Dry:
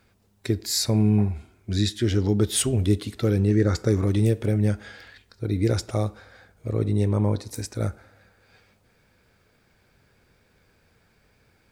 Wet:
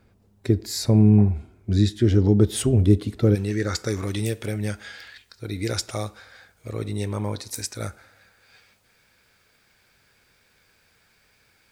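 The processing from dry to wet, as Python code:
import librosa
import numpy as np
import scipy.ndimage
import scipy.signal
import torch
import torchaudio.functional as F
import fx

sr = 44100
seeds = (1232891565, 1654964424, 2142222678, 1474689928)

y = fx.tilt_shelf(x, sr, db=fx.steps((0.0, 5.0), (3.34, -6.5)), hz=970.0)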